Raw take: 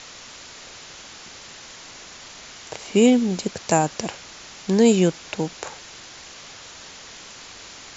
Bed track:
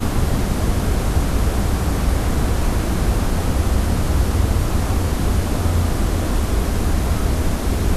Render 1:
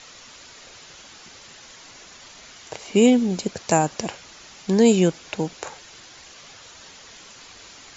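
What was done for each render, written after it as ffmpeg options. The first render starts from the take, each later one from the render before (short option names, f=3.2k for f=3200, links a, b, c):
-af "afftdn=nr=6:nf=-42"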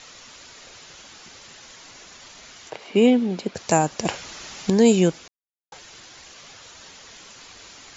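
-filter_complex "[0:a]asettb=1/sr,asplit=3[a][b][c];[a]atrim=end=2.704[d];[b]atrim=start=2.7:end=3.55,asetpts=PTS-STARTPTS,afade=t=in:d=0.004:c=qsin,afade=t=out:st=0.846:d=0.004:c=qsin,acrossover=split=160 4400:gain=0.224 1 0.141[e][f][g];[e][f][g]amix=inputs=3:normalize=0[h];[c]atrim=start=3.546[i];[d][h]acrossfade=d=0.004:c1=hsin:c2=qsin[j];[j][i]acrossfade=d=0.004:c1=qsin:c2=hsin,asettb=1/sr,asplit=3[k][l][m];[k]atrim=end=4.054[n];[l]atrim=start=4.05:end=4.7,asetpts=PTS-STARTPTS,afade=t=in:d=0.004:c=qsin,afade=t=out:st=0.646:d=0.004:c=qsin,acontrast=60[o];[m]atrim=start=4.696[p];[n][o]acrossfade=d=0.004:c1=hsin:c2=qsin[q];[q][p]acrossfade=d=0.004:c1=qsin:c2=hsin,asplit=3[r][s][t];[r]atrim=end=5.28,asetpts=PTS-STARTPTS,afade=t=out:st=5.276:d=0.004:c=hsin[u];[s]atrim=start=5.28:end=5.72,asetpts=PTS-STARTPTS,volume=0[v];[t]atrim=start=5.72,asetpts=PTS-STARTPTS,afade=t=in:d=0.004:c=hsin[w];[u][v][w]concat=n=3:v=0:a=1"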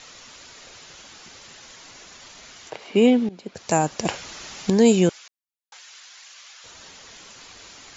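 -filter_complex "[0:a]asettb=1/sr,asplit=3[a][b][c];[a]atrim=end=5.094[d];[b]atrim=start=5.09:end=6.64,asetpts=PTS-STARTPTS,afade=t=in:d=0.004:c=qsin,afade=t=out:st=1.546:d=0.004:c=qsin,highpass=1.2k[e];[c]atrim=start=6.636[f];[d][e]acrossfade=d=0.004:c1=hsin:c2=qsin[g];[g][f]acrossfade=d=0.004:c1=qsin:c2=hsin,asplit=2[h][i];[h]atrim=end=3.29,asetpts=PTS-STARTPTS,afade=t=out:st=3.286:d=0.004:c=hsin:silence=0.125893[j];[i]atrim=start=3.29,asetpts=PTS-STARTPTS,afade=t=in:d=0.58:silence=0.125893[k];[j][k]concat=n=2:v=0:a=1"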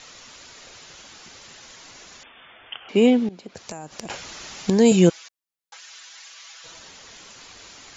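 -filter_complex "[0:a]asettb=1/sr,asplit=3[a][b][c];[a]atrim=end=2.234[d];[b]atrim=start=2.23:end=2.89,asetpts=PTS-STARTPTS,afade=t=in:d=0.004:c=qsin,afade=t=out:st=0.656:d=0.004:c=qsin,lowpass=f=3.1k:t=q:w=0.5098,lowpass=f=3.1k:t=q:w=0.6013,lowpass=f=3.1k:t=q:w=0.9,lowpass=f=3.1k:t=q:w=2.563,afreqshift=-3600[e];[c]atrim=start=2.886[f];[d][e]acrossfade=d=0.004:c1=hsin:c2=qsin[g];[g][f]acrossfade=d=0.004:c1=qsin:c2=hsin,asettb=1/sr,asplit=3[h][i][j];[h]atrim=end=3.394[k];[i]atrim=start=3.39:end=4.1,asetpts=PTS-STARTPTS,afade=t=in:d=0.004:c=qsin,afade=t=out:st=0.706:d=0.004:c=qsin,acompressor=threshold=-31dB:ratio=12:attack=3.2:release=140:knee=1:detection=peak[l];[j]atrim=start=4.096[m];[k][l]acrossfade=d=0.004:c1=hsin:c2=qsin[n];[n][m]acrossfade=d=0.004:c1=qsin:c2=hsin,asettb=1/sr,asplit=3[o][p][q];[o]atrim=end=4.914[r];[p]atrim=start=4.91:end=6.79,asetpts=PTS-STARTPTS,afade=t=in:d=0.004:c=qsin,afade=t=out:st=1.876:d=0.004:c=qsin,aecho=1:1:6.1:0.71,atrim=end_sample=82908[s];[q]atrim=start=6.786[t];[r][s]acrossfade=d=0.004:c1=hsin:c2=qsin[u];[u][t]acrossfade=d=0.004:c1=qsin:c2=hsin"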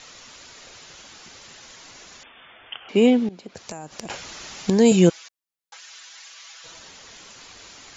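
-af anull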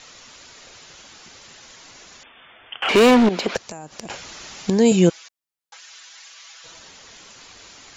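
-filter_complex "[0:a]asettb=1/sr,asplit=3[a][b][c];[a]atrim=end=2.824[d];[b]atrim=start=2.82:end=3.57,asetpts=PTS-STARTPTS,afade=t=in:d=0.004:c=qsin,afade=t=out:st=0.746:d=0.004:c=qsin,asplit=2[e][f];[f]highpass=f=720:p=1,volume=32dB,asoftclip=type=tanh:threshold=-6.5dB[g];[e][g]amix=inputs=2:normalize=0,lowpass=f=3.5k:p=1,volume=-6dB[h];[c]atrim=start=3.566[i];[d][h]acrossfade=d=0.004:c1=hsin:c2=qsin[j];[j][i]acrossfade=d=0.004:c1=qsin:c2=hsin"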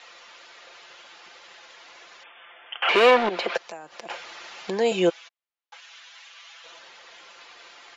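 -filter_complex "[0:a]acrossover=split=400 4100:gain=0.0794 1 0.126[a][b][c];[a][b][c]amix=inputs=3:normalize=0,aecho=1:1:5.8:0.39"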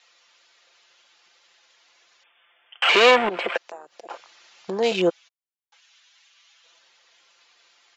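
-af "afwtdn=0.0224,highshelf=f=3k:g=11.5"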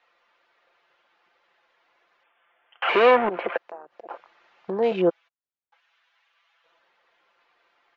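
-af "lowpass=1.6k"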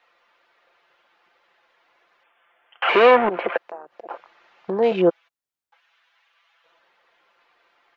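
-af "volume=3.5dB,alimiter=limit=-3dB:level=0:latency=1"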